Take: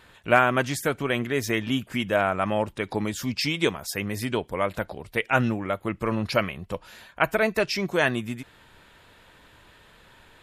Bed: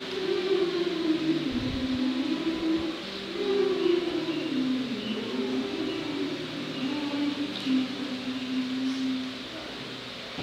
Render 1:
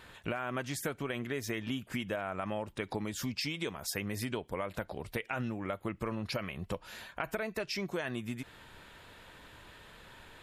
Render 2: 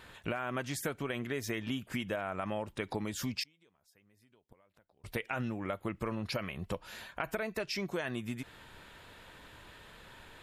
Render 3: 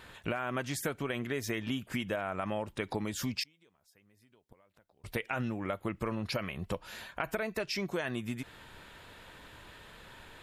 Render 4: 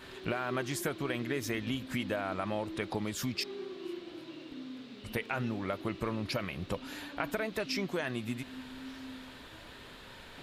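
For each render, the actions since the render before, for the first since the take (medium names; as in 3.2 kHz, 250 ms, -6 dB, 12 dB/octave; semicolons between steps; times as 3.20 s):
peak limiter -13.5 dBFS, peak gain reduction 10 dB; compression 6:1, threshold -33 dBFS, peak gain reduction 13 dB
3.43–5.04 s: inverted gate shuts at -33 dBFS, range -31 dB
trim +1.5 dB
add bed -16.5 dB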